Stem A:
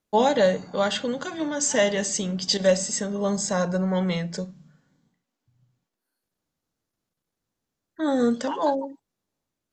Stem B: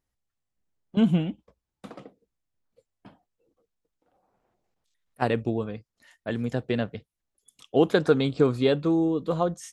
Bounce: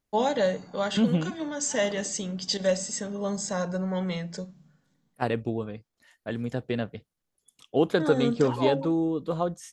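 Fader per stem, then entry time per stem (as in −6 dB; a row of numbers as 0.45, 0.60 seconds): −5.0, −2.5 decibels; 0.00, 0.00 seconds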